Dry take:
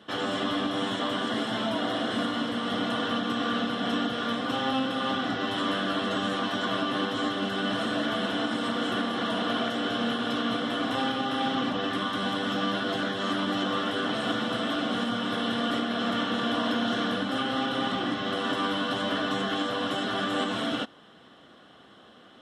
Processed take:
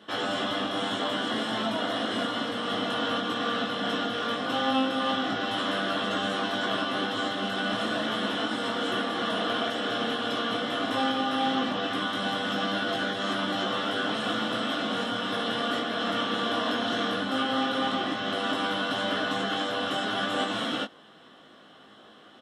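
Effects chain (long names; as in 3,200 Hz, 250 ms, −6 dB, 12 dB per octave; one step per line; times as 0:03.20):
low-shelf EQ 130 Hz −9 dB
double-tracking delay 19 ms −4.5 dB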